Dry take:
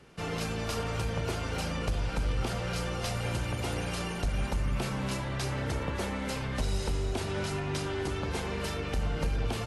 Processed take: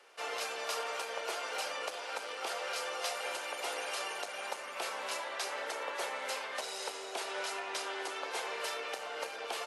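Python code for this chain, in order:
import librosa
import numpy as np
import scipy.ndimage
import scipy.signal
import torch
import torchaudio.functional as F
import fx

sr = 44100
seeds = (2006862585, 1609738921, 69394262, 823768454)

y = scipy.signal.sosfilt(scipy.signal.butter(4, 510.0, 'highpass', fs=sr, output='sos'), x)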